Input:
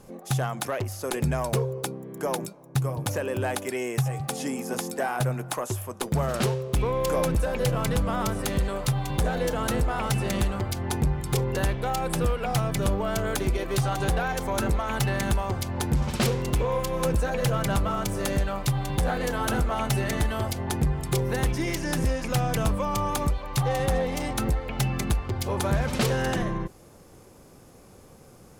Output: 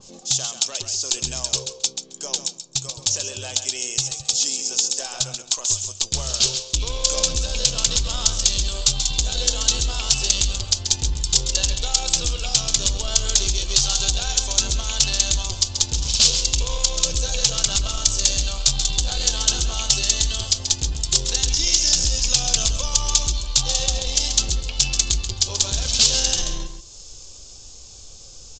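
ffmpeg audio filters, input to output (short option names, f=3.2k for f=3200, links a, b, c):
-filter_complex "[0:a]asubboost=boost=9.5:cutoff=57,aeval=exprs='0.631*(cos(1*acos(clip(val(0)/0.631,-1,1)))-cos(1*PI/2))+0.02*(cos(5*acos(clip(val(0)/0.631,-1,1)))-cos(5*PI/2))+0.0501*(cos(7*acos(clip(val(0)/0.631,-1,1)))-cos(7*PI/2))':c=same,alimiter=limit=-12.5dB:level=0:latency=1:release=11,aexciter=amount=15.8:drive=3.6:freq=3k,acompressor=mode=upward:threshold=-25dB:ratio=2.5,aresample=16000,asoftclip=type=tanh:threshold=-5.5dB,aresample=44100,flanger=delay=0.9:depth=5:regen=83:speed=0.18:shape=triangular,asplit=2[a][b];[b]aecho=0:1:134|268:0.376|0.0564[c];[a][c]amix=inputs=2:normalize=0,adynamicequalizer=threshold=0.0112:dfrequency=2500:dqfactor=0.7:tfrequency=2500:tqfactor=0.7:attack=5:release=100:ratio=0.375:range=3:mode=boostabove:tftype=highshelf,volume=-1dB"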